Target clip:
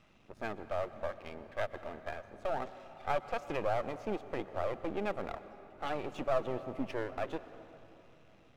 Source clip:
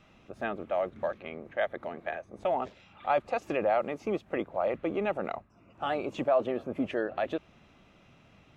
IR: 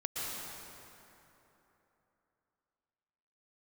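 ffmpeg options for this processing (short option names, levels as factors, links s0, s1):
-filter_complex "[0:a]aeval=exprs='if(lt(val(0),0),0.251*val(0),val(0))':c=same,asplit=2[s0][s1];[1:a]atrim=start_sample=2205[s2];[s1][s2]afir=irnorm=-1:irlink=0,volume=0.168[s3];[s0][s3]amix=inputs=2:normalize=0,volume=0.668"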